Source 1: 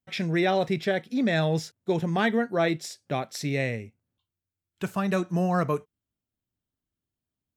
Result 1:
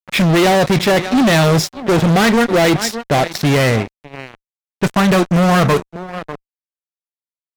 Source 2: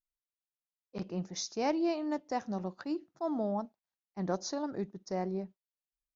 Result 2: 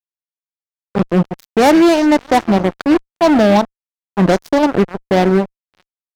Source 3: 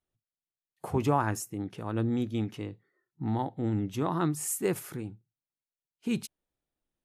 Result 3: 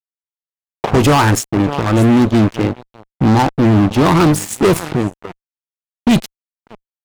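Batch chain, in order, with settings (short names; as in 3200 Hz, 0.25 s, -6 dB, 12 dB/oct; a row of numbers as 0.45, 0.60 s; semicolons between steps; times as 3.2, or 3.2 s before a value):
feedback echo 0.595 s, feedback 20%, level -18 dB; low-pass opened by the level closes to 1100 Hz, open at -23.5 dBFS; fuzz box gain 33 dB, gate -42 dBFS; match loudness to -14 LUFS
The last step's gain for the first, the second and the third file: +3.0, +7.0, +6.0 dB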